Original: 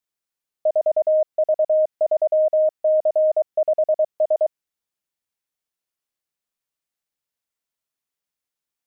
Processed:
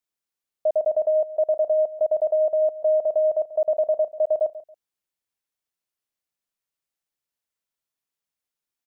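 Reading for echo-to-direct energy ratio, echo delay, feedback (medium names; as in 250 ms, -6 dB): -15.5 dB, 139 ms, 24%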